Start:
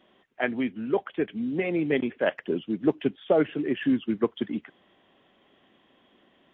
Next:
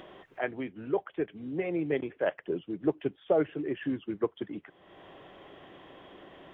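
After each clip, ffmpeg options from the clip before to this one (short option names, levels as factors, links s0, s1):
-af "equalizer=f=230:t=o:w=0.35:g=-14,acompressor=mode=upward:threshold=0.0282:ratio=2.5,highshelf=f=2200:g=-11,volume=0.75"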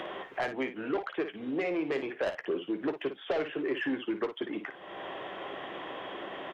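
-filter_complex "[0:a]asplit=2[s0][s1];[s1]highpass=f=720:p=1,volume=10,asoftclip=type=tanh:threshold=0.2[s2];[s0][s2]amix=inputs=2:normalize=0,lowpass=f=2400:p=1,volume=0.501,acrossover=split=260|2600[s3][s4][s5];[s3]acompressor=threshold=0.00398:ratio=4[s6];[s4]acompressor=threshold=0.0282:ratio=4[s7];[s5]acompressor=threshold=0.00631:ratio=4[s8];[s6][s7][s8]amix=inputs=3:normalize=0,aecho=1:1:15|56:0.251|0.335"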